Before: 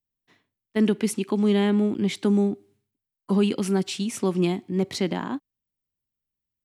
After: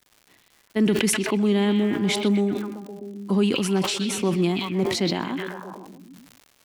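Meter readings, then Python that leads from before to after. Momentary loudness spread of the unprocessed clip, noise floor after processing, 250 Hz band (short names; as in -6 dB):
8 LU, -61 dBFS, +0.5 dB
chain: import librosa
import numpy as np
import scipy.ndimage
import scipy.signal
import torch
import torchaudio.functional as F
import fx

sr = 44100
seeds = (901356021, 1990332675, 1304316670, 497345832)

y = fx.echo_stepped(x, sr, ms=127, hz=3200.0, octaves=-0.7, feedback_pct=70, wet_db=-2)
y = fx.dmg_crackle(y, sr, seeds[0], per_s=210.0, level_db=-42.0)
y = fx.sustainer(y, sr, db_per_s=43.0)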